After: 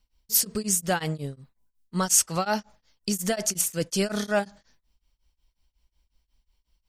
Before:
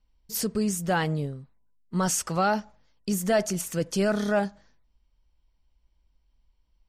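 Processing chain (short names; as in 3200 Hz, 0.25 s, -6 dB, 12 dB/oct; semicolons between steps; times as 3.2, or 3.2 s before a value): high shelf 2500 Hz +11 dB; beating tremolo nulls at 5.5 Hz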